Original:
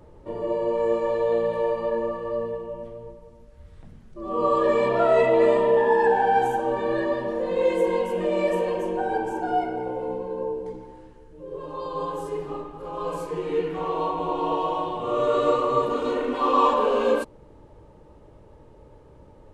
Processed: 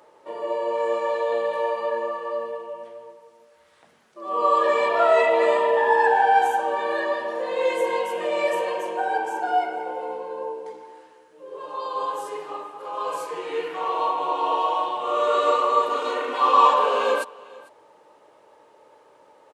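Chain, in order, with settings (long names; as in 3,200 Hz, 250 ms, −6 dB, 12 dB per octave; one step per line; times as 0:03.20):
high-pass filter 710 Hz 12 dB per octave
single-tap delay 449 ms −22 dB
level +5.5 dB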